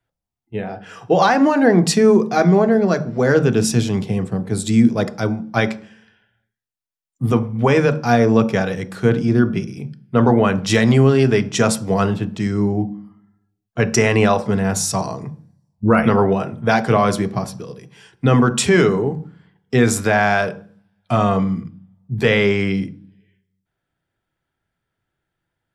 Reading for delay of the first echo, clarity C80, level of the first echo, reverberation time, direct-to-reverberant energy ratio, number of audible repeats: no echo audible, 21.0 dB, no echo audible, 0.45 s, 11.0 dB, no echo audible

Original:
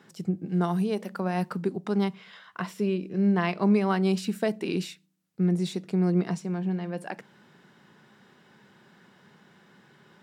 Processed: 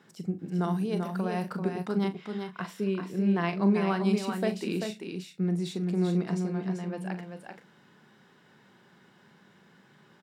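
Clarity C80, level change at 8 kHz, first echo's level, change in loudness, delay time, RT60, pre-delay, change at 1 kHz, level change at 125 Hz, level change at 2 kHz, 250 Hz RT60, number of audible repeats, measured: no reverb audible, −2.0 dB, −10.5 dB, −2.5 dB, 41 ms, no reverb audible, no reverb audible, −2.0 dB, −2.0 dB, −2.0 dB, no reverb audible, 3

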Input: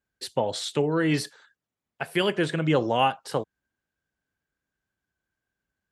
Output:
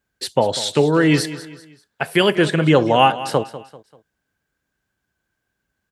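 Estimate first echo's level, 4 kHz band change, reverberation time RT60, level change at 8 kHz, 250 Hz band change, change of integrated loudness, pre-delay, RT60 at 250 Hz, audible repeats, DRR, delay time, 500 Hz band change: −15.0 dB, +8.5 dB, no reverb audible, +8.5 dB, +8.5 dB, +8.5 dB, no reverb audible, no reverb audible, 3, no reverb audible, 195 ms, +8.5 dB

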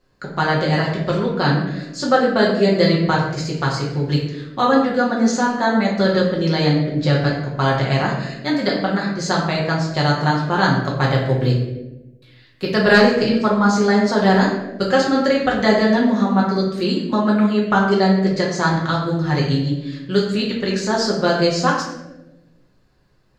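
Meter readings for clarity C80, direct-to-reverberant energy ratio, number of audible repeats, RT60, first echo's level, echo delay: 6.5 dB, −4.0 dB, no echo audible, 1.0 s, no echo audible, no echo audible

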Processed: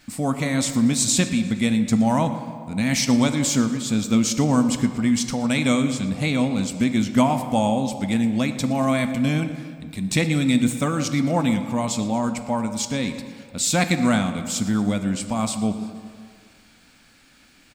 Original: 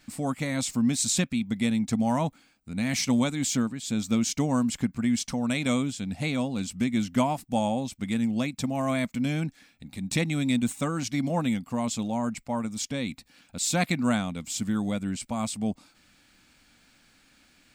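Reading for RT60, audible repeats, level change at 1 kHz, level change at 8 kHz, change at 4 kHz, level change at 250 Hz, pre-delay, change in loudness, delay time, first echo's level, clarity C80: 2.0 s, 2, +6.0 dB, +6.0 dB, +6.0 dB, +6.0 dB, 11 ms, +6.0 dB, 117 ms, −18.5 dB, 10.0 dB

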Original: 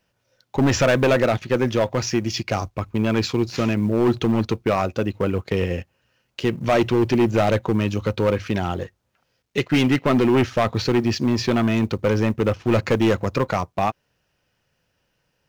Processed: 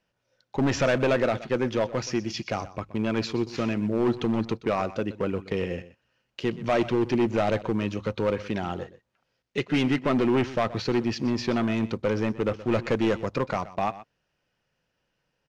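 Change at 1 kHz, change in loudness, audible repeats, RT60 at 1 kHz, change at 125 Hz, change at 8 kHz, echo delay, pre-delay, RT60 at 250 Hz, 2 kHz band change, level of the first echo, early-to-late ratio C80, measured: −5.0 dB, −5.5 dB, 1, no reverb audible, −8.5 dB, −8.5 dB, 124 ms, no reverb audible, no reverb audible, −5.5 dB, −16.5 dB, no reverb audible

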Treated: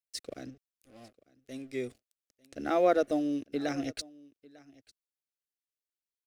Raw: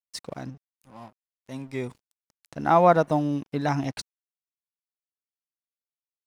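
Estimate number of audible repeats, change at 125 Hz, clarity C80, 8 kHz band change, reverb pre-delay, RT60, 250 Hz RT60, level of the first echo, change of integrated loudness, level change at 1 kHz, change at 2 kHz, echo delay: 1, −18.0 dB, no reverb audible, −2.0 dB, no reverb audible, no reverb audible, no reverb audible, −23.0 dB, −7.5 dB, −12.0 dB, −6.5 dB, 898 ms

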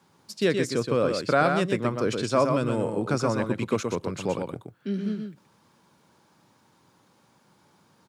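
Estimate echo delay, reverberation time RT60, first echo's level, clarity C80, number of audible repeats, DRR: 123 ms, no reverb audible, −5.5 dB, no reverb audible, 1, no reverb audible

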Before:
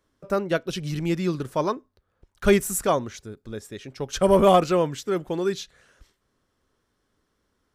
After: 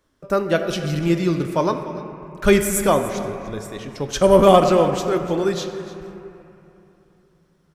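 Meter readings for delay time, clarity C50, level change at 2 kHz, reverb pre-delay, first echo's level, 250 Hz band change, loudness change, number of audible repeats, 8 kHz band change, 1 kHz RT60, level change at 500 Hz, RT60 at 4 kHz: 296 ms, 7.0 dB, +5.0 dB, 3 ms, −16.5 dB, +5.0 dB, +4.5 dB, 1, +4.5 dB, 3.1 s, +5.0 dB, 1.8 s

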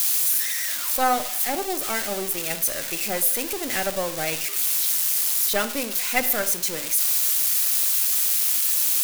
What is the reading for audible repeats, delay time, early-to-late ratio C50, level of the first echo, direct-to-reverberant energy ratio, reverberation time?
no echo audible, no echo audible, 13.5 dB, no echo audible, 12.0 dB, 0.45 s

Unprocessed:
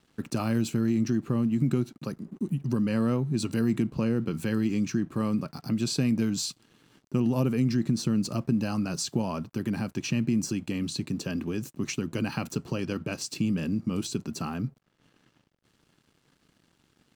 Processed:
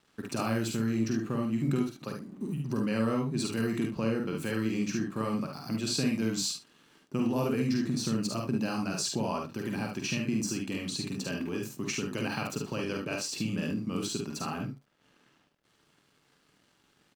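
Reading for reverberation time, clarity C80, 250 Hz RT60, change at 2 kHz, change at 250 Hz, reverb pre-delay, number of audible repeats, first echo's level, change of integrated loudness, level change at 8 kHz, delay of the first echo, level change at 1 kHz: no reverb audible, no reverb audible, no reverb audible, +1.5 dB, −4.0 dB, no reverb audible, 2, −6.0 dB, −3.0 dB, +0.5 dB, 45 ms, +1.5 dB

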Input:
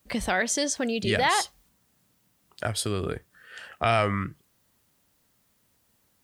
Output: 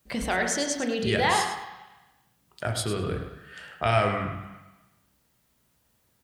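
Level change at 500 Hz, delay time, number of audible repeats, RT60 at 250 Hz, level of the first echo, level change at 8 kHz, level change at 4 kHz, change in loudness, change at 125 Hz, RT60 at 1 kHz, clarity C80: +0.5 dB, 104 ms, 1, 1.1 s, −10.5 dB, −1.5 dB, −1.0 dB, −0.5 dB, +1.5 dB, 1.2 s, 6.5 dB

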